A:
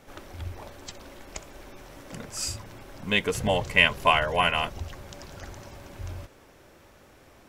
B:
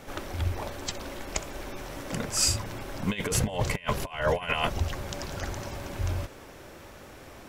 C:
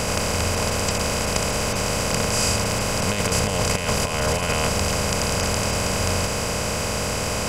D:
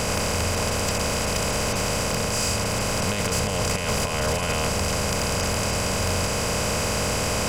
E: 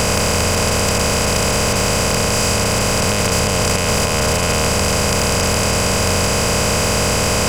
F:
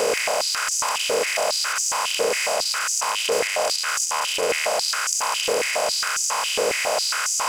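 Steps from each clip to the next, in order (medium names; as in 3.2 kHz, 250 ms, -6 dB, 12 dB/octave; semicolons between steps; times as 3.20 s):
compressor with a negative ratio -29 dBFS, ratio -0.5; trim +3 dB
spectral levelling over time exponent 0.2; crackle 120 per s -43 dBFS; trim -3 dB
gain riding 0.5 s; saturation -16.5 dBFS, distortion -17 dB
spectral levelling over time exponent 0.4; trim +4 dB
step-sequenced high-pass 7.3 Hz 450–6300 Hz; trim -8 dB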